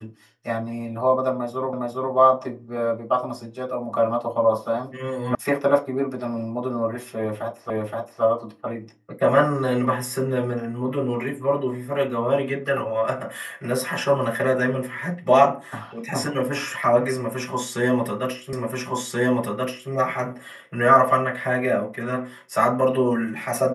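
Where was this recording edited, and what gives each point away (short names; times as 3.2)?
1.73 repeat of the last 0.41 s
5.35 sound cut off
7.7 repeat of the last 0.52 s
18.53 repeat of the last 1.38 s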